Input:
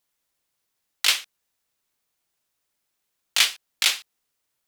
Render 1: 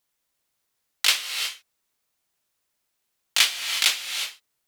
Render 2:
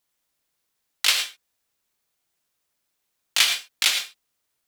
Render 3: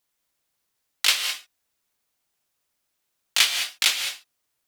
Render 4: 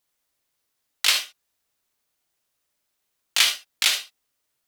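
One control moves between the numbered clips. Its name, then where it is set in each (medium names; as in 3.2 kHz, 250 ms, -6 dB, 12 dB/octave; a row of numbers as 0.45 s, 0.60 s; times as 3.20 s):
gated-style reverb, gate: 390 ms, 130 ms, 230 ms, 90 ms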